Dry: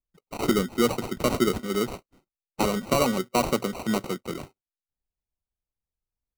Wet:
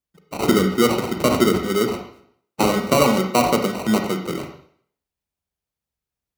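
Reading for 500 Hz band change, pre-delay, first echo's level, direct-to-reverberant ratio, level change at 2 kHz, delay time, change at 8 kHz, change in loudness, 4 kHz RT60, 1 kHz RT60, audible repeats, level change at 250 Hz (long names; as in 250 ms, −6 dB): +6.5 dB, 33 ms, no echo audible, 4.0 dB, +7.0 dB, no echo audible, +5.5 dB, +6.5 dB, 0.55 s, 0.60 s, no echo audible, +7.0 dB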